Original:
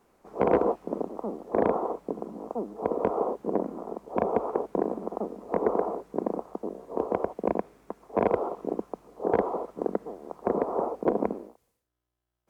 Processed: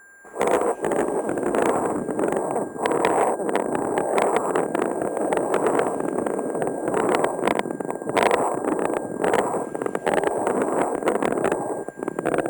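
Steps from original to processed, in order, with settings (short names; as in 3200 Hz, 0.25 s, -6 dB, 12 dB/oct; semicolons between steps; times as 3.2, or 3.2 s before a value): LFO low-pass sine 0.22 Hz 930–2800 Hz; echoes that change speed 0.353 s, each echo -3 st, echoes 3; tone controls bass -7 dB, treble +6 dB; in parallel at +1 dB: vocal rider 2 s; on the sum: whine 1600 Hz -45 dBFS; sample-and-hold 5×; core saturation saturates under 1600 Hz; gain -1.5 dB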